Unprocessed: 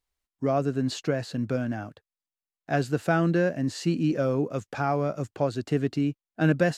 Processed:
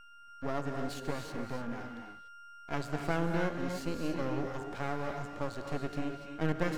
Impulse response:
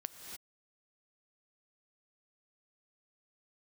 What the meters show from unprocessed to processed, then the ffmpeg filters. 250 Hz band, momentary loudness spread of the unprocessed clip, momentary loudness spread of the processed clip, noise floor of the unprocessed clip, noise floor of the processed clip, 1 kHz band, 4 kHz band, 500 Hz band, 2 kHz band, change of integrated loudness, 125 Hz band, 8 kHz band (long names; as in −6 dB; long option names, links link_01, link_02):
−10.0 dB, 6 LU, 12 LU, below −85 dBFS, −51 dBFS, −6.5 dB, −7.0 dB, −10.0 dB, −7.5 dB, −9.5 dB, −10.5 dB, −8.0 dB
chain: -filter_complex "[0:a]aeval=exprs='val(0)+0.00794*sin(2*PI*1400*n/s)':channel_layout=same,aeval=exprs='max(val(0),0)':channel_layout=same[link_01];[1:a]atrim=start_sample=2205[link_02];[link_01][link_02]afir=irnorm=-1:irlink=0,volume=-2.5dB"